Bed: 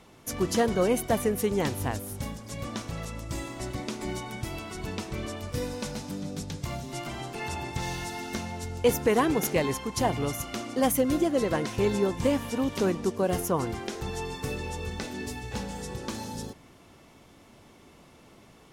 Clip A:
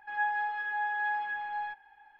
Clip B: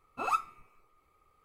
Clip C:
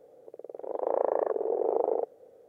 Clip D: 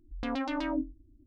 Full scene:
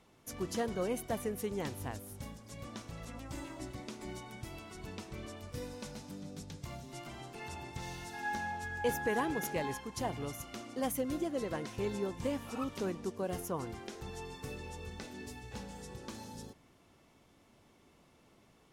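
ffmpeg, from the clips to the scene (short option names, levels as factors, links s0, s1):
-filter_complex "[0:a]volume=0.299[s0];[2:a]aecho=1:1:6.3:0.65[s1];[4:a]atrim=end=1.26,asetpts=PTS-STARTPTS,volume=0.141,afade=t=in:d=0.004:c=hsin,afade=t=out:st=1.256:d=0.004:c=hsin,adelay=2840[s2];[1:a]atrim=end=2.19,asetpts=PTS-STARTPTS,volume=0.422,afade=t=in:d=0.004:c=hsin,afade=t=out:st=2.186:d=0.004:c=hsin,adelay=8060[s3];[s1]atrim=end=1.44,asetpts=PTS-STARTPTS,volume=0.141,afade=t=in:d=0.004:c=hsin,afade=t=out:st=1.436:d=0.004:c=hsin,adelay=12280[s4];[s0][s2][s3][s4]amix=inputs=4:normalize=0"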